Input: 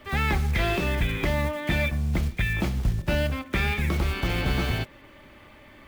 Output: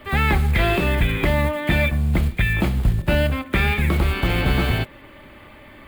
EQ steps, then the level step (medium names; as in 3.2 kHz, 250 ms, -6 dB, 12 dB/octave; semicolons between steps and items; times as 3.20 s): peaking EQ 5.8 kHz -12 dB 0.5 oct; +6.0 dB